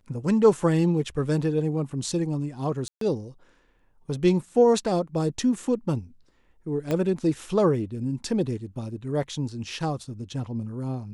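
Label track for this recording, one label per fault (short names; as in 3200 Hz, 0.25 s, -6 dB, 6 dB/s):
2.880000	3.010000	gap 0.133 s
6.910000	6.910000	pop -14 dBFS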